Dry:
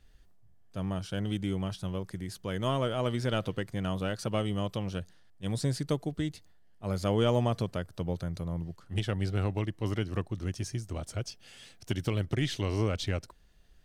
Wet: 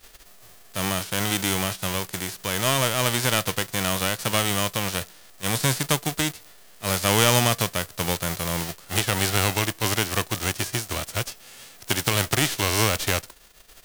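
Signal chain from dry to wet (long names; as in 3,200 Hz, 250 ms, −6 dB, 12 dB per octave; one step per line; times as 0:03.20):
spectral envelope flattened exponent 0.3
level +7 dB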